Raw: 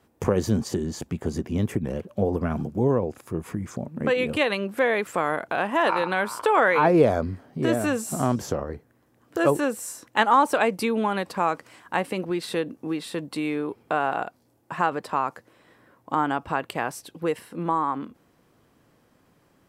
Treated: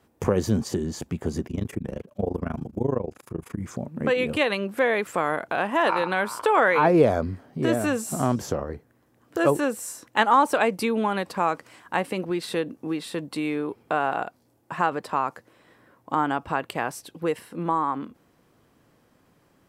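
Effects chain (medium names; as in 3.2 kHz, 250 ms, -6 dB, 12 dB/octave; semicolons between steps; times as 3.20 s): 1.47–3.60 s: AM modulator 26 Hz, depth 90%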